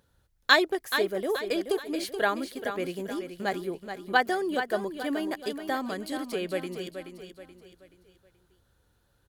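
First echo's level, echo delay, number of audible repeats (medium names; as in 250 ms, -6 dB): -8.5 dB, 428 ms, 4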